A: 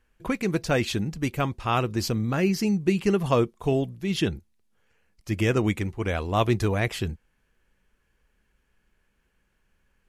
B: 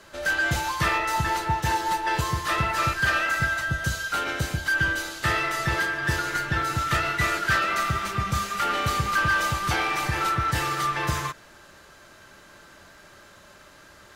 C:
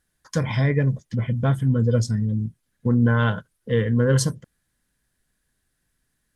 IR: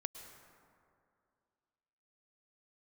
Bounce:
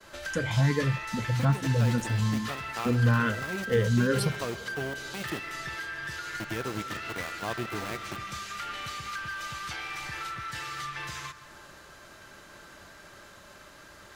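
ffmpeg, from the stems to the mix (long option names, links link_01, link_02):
-filter_complex "[0:a]aeval=exprs='val(0)*gte(abs(val(0)),0.0708)':channel_layout=same,highpass=110,adelay=1100,volume=-3.5dB,asplit=2[link_01][link_02];[link_02]volume=-11.5dB[link_03];[1:a]acrossover=split=140|1400|7600[link_04][link_05][link_06][link_07];[link_04]acompressor=threshold=-45dB:ratio=4[link_08];[link_05]acompressor=threshold=-43dB:ratio=4[link_09];[link_06]acompressor=threshold=-31dB:ratio=4[link_10];[link_07]acompressor=threshold=-54dB:ratio=4[link_11];[link_08][link_09][link_10][link_11]amix=inputs=4:normalize=0,volume=-2dB,asplit=2[link_12][link_13];[link_13]volume=-8dB[link_14];[2:a]asplit=2[link_15][link_16];[link_16]afreqshift=2.4[link_17];[link_15][link_17]amix=inputs=2:normalize=1,volume=-2dB,asplit=2[link_18][link_19];[link_19]apad=whole_len=493049[link_20];[link_01][link_20]sidechaincompress=threshold=-30dB:ratio=8:attack=16:release=816[link_21];[link_21][link_12]amix=inputs=2:normalize=0,acompressor=threshold=-42dB:ratio=2.5,volume=0dB[link_22];[3:a]atrim=start_sample=2205[link_23];[link_03][link_14]amix=inputs=2:normalize=0[link_24];[link_24][link_23]afir=irnorm=-1:irlink=0[link_25];[link_18][link_22][link_25]amix=inputs=3:normalize=0,agate=range=-33dB:threshold=-49dB:ratio=3:detection=peak"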